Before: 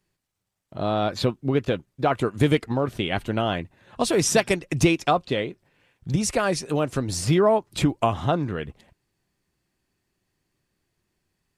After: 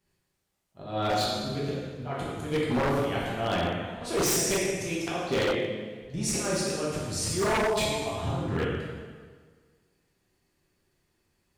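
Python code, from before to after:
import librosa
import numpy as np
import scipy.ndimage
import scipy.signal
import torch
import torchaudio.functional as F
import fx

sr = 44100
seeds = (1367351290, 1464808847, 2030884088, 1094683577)

y = fx.auto_swell(x, sr, attack_ms=292.0)
y = fx.rev_plate(y, sr, seeds[0], rt60_s=1.6, hf_ratio=0.85, predelay_ms=0, drr_db=-7.0)
y = 10.0 ** (-15.5 / 20.0) * (np.abs((y / 10.0 ** (-15.5 / 20.0) + 3.0) % 4.0 - 2.0) - 1.0)
y = F.gain(torch.from_numpy(y), -4.5).numpy()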